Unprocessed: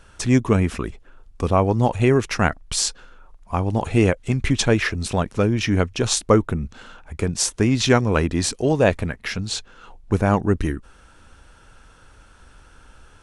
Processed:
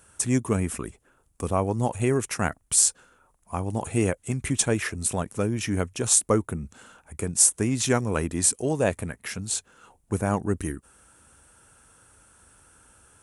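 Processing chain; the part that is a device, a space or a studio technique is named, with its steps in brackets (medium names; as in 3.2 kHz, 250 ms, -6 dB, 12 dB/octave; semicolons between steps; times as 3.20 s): budget condenser microphone (high-pass 72 Hz; resonant high shelf 6.5 kHz +13.5 dB, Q 1.5); trim -6.5 dB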